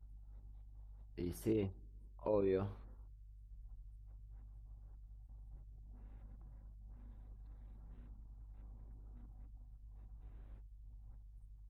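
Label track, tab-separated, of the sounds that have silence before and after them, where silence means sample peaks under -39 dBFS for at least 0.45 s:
1.190000	1.670000	sound
2.260000	2.680000	sound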